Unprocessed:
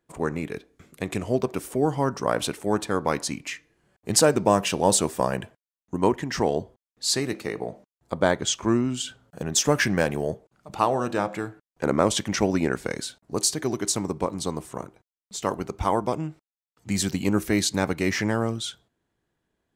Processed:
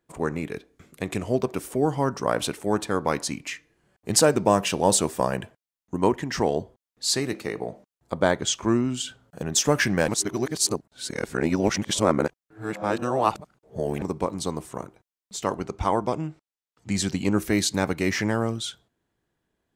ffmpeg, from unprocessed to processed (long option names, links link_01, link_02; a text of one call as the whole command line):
ffmpeg -i in.wav -filter_complex "[0:a]asettb=1/sr,asplit=3[link_01][link_02][link_03];[link_01]atrim=end=15.444[link_04];[link_02]atrim=start=15.44:end=17.39,asetpts=PTS-STARTPTS,afade=type=in:duration=0.004:curve=qsin,afade=type=out:start_time=1.946:duration=0.004:curve=qsin,lowpass=8900[link_05];[link_03]atrim=start=17.386[link_06];[link_04][link_05]acrossfade=duration=0.004:curve1=hsin:curve2=qsin[link_07];[link_07][link_06]acrossfade=duration=0.004:curve1=qsin:curve2=hsin,asplit=3[link_08][link_09][link_10];[link_08]atrim=end=10.082[link_11];[link_09]atrim=start=10.078:end=14.022,asetpts=PTS-STARTPTS,areverse[link_12];[link_10]atrim=start=14.018[link_13];[link_11][link_12]acrossfade=duration=0.004:curve1=hsin:curve2=hsin[link_14];[link_14][link_13]acrossfade=duration=0.004:curve1=hsin:curve2=hsin" out.wav